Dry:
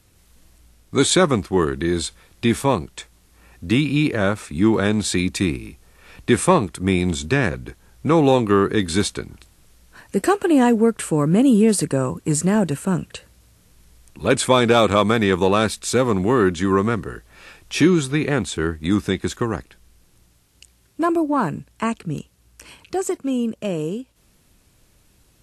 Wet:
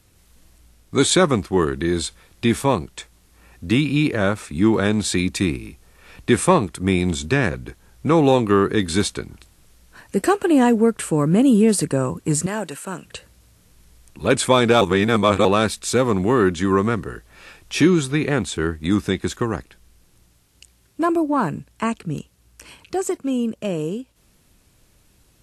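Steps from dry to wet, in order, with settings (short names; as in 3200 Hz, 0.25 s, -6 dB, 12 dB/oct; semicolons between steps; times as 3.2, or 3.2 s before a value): 12.46–13.05 HPF 830 Hz 6 dB/oct; 14.81–15.45 reverse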